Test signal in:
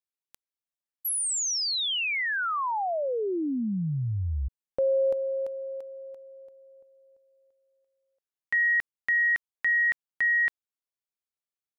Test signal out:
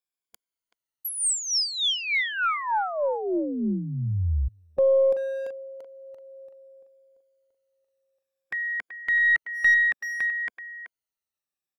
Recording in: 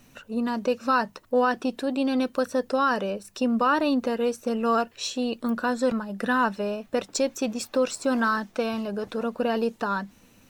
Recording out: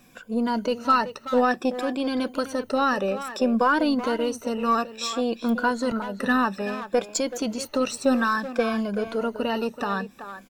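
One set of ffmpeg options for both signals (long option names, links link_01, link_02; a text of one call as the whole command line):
ffmpeg -i in.wav -filter_complex "[0:a]afftfilt=real='re*pow(10,12/40*sin(2*PI*(1.8*log(max(b,1)*sr/1024/100)/log(2)-(-0.59)*(pts-256)/sr)))':imag='im*pow(10,12/40*sin(2*PI*(1.8*log(max(b,1)*sr/1024/100)/log(2)-(-0.59)*(pts-256)/sr)))':win_size=1024:overlap=0.75,asplit=2[link_01][link_02];[link_02]adelay=380,highpass=300,lowpass=3400,asoftclip=type=hard:threshold=-19.5dB,volume=-10dB[link_03];[link_01][link_03]amix=inputs=2:normalize=0,aeval=exprs='0.335*(cos(1*acos(clip(val(0)/0.335,-1,1)))-cos(1*PI/2))+0.00944*(cos(6*acos(clip(val(0)/0.335,-1,1)))-cos(6*PI/2))+0.00473*(cos(8*acos(clip(val(0)/0.335,-1,1)))-cos(8*PI/2))':channel_layout=same" out.wav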